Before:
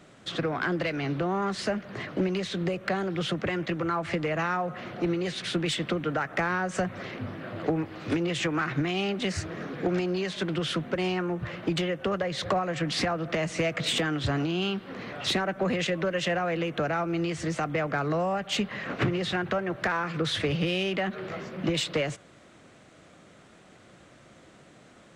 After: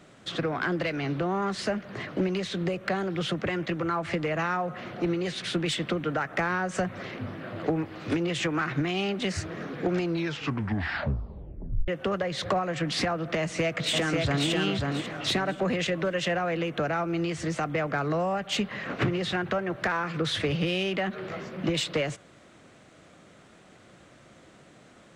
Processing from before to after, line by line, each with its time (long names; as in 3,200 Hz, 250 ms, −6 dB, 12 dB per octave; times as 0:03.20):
0:09.99: tape stop 1.89 s
0:13.39–0:14.47: delay throw 540 ms, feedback 30%, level −2.5 dB